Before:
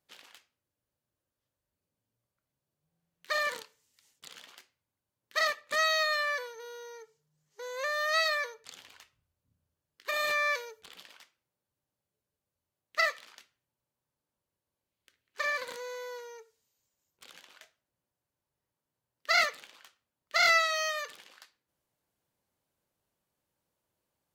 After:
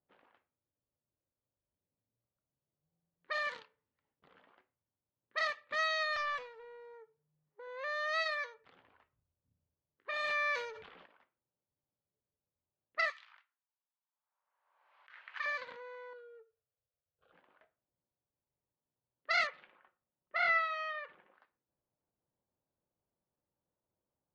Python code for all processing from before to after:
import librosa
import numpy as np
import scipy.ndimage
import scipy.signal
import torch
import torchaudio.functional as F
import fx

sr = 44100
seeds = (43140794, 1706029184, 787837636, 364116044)

y = fx.chain(x, sr, fx.lowpass(hz=11000.0, slope=12),
    fx.doppler_dist(depth_ms=0.43), at=(6.16, 6.94))
y = fx.chain(y, sr, fx.low_shelf(hz=340.0, db=7.5),
    fx.transient(attack_db=-5, sustain_db=-9), at=(7.67, 8.38))
y = fx.chain(y, sr, fx.law_mismatch(coded='mu'),
    fx.bass_treble(bass_db=-3, treble_db=-2),
    fx.sustainer(db_per_s=52.0), at=(10.24, 11.06))
y = fx.chain(y, sr, fx.highpass(hz=940.0, slope=24),
    fx.pre_swell(db_per_s=43.0), at=(13.1, 15.46))
y = fx.chain(y, sr, fx.fixed_phaser(hz=1400.0, stages=8),
    fx.notch_comb(f0_hz=190.0), at=(16.13, 17.32))
y = fx.chain(y, sr, fx.lowpass(hz=2300.0, slope=12),
    fx.comb(ms=5.5, depth=0.34), at=(19.47, 21.34))
y = scipy.signal.sosfilt(scipy.signal.butter(2, 3800.0, 'lowpass', fs=sr, output='sos'), y)
y = fx.env_lowpass(y, sr, base_hz=1000.0, full_db=-25.5)
y = fx.dynamic_eq(y, sr, hz=370.0, q=1.1, threshold_db=-49.0, ratio=4.0, max_db=-6)
y = y * 10.0 ** (-4.5 / 20.0)